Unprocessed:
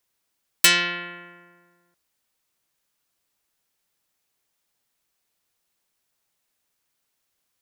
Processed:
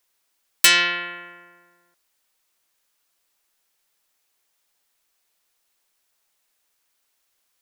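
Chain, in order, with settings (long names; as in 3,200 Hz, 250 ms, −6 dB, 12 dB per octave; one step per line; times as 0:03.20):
parametric band 120 Hz −11.5 dB 2.5 octaves
in parallel at −0.5 dB: brickwall limiter −13 dBFS, peak gain reduction 10 dB
on the sum: level −1 dB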